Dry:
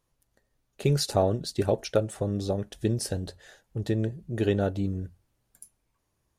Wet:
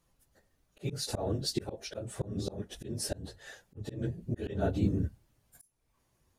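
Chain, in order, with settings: phase randomisation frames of 50 ms; slow attack 392 ms; trim +3 dB

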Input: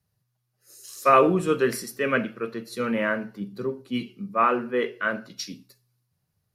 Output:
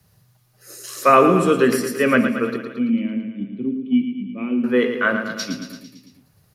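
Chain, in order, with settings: 2.56–4.64 s: cascade formant filter i; dynamic bell 250 Hz, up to +8 dB, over -44 dBFS, Q 4.6; feedback delay 112 ms, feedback 54%, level -9 dB; three bands compressed up and down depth 40%; trim +6 dB

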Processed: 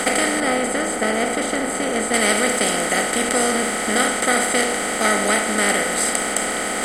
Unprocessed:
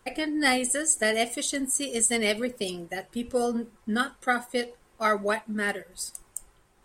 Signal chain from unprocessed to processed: spectral levelling over time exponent 0.2; 0.40–2.14 s: treble shelf 2.1 kHz -10 dB; trim -1 dB

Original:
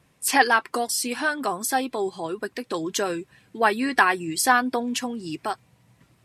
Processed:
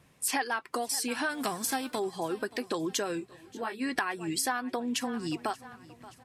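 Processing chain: 1.29–1.98 s: formants flattened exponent 0.6; feedback delay 577 ms, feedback 38%, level -22.5 dB; compression 6:1, threshold -28 dBFS, peak gain reduction 15.5 dB; 3.19–3.80 s: detune thickener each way 19 cents -> 36 cents

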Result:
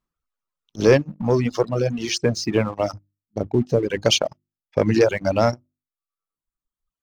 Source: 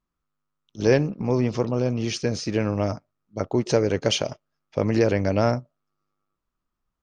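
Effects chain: reverb removal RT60 1.5 s; hum notches 50/100/150/200/250/300/350 Hz; reverb removal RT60 0.53 s; 3.38–3.83 s: FFT filter 240 Hz 0 dB, 720 Hz -7 dB, 1.4 kHz -19 dB; waveshaping leveller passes 1; trim +2.5 dB

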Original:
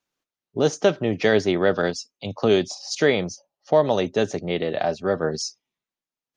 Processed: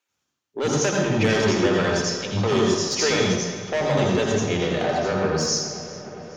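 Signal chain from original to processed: saturation -18.5 dBFS, distortion -8 dB; filtered feedback delay 411 ms, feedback 78%, low-pass 4.2 kHz, level -16 dB; reverberation RT60 1.0 s, pre-delay 74 ms, DRR -0.5 dB

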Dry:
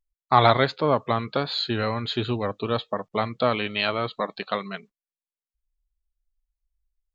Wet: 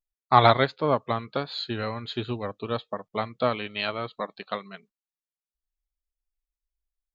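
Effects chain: upward expansion 1.5:1, over -35 dBFS; trim +1 dB

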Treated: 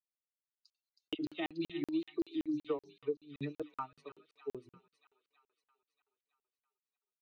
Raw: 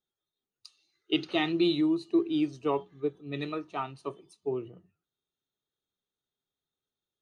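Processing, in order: expander on every frequency bin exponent 1.5; band-pass 130–3900 Hz; hum notches 50/100/150/200/250/300/350/400 Hz; 1.14–3.62 s: phase dispersion lows, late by 49 ms, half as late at 1.6 kHz; tremolo 5.5 Hz, depth 86%; compression 5:1, threshold -40 dBFS, peak gain reduction 14.5 dB; peaking EQ 330 Hz +4.5 dB 1.8 oct; comb 6.6 ms, depth 42%; feedback echo behind a high-pass 319 ms, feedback 63%, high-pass 2.5 kHz, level -5.5 dB; crackling interface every 0.19 s, samples 2048, zero, from 0.51 s; trim +1 dB

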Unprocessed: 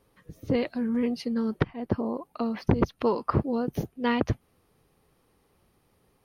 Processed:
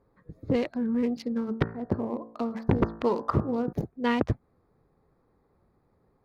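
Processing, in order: local Wiener filter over 15 samples; 1.13–3.73 s: de-hum 56.31 Hz, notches 33

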